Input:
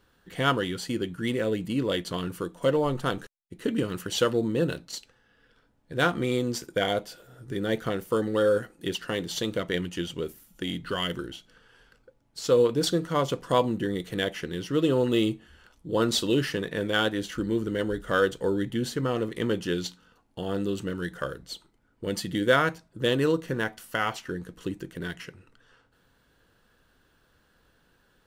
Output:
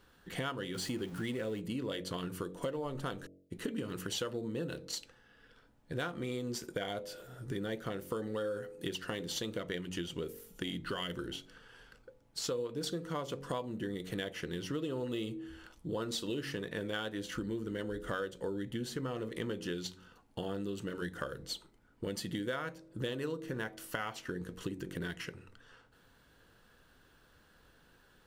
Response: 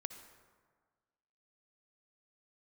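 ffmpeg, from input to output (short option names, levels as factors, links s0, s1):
-filter_complex "[0:a]asettb=1/sr,asplit=3[s0][s1][s2];[s0]atrim=end=0.744[s3];[s1]atrim=start=0.74:end=1.6,asetpts=PTS-STARTPTS,afade=t=in:d=0.004:c=qsin,afade=t=out:st=0.856:d=0.004:c=qsin,aeval=exprs='val(0)+0.5*0.01*sgn(val(0))':c=same[s4];[s2]atrim=start=1.596[s5];[s3][s4]acrossfade=d=0.004:c1=hsin:c2=qsin[s6];[s6][s5]acrossfade=d=0.004:c1=qsin:c2=hsin,bandreject=f=46.32:t=h:w=4,bandreject=f=92.64:t=h:w=4,bandreject=f=138.96:t=h:w=4,bandreject=f=185.28:t=h:w=4,bandreject=f=231.6:t=h:w=4,bandreject=f=277.92:t=h:w=4,bandreject=f=324.24:t=h:w=4,bandreject=f=370.56:t=h:w=4,bandreject=f=416.88:t=h:w=4,bandreject=f=463.2:t=h:w=4,bandreject=f=509.52:t=h:w=4,bandreject=f=555.84:t=h:w=4,bandreject=f=602.16:t=h:w=4,bandreject=f=648.48:t=h:w=4,acompressor=threshold=0.0158:ratio=6,volume=1.12"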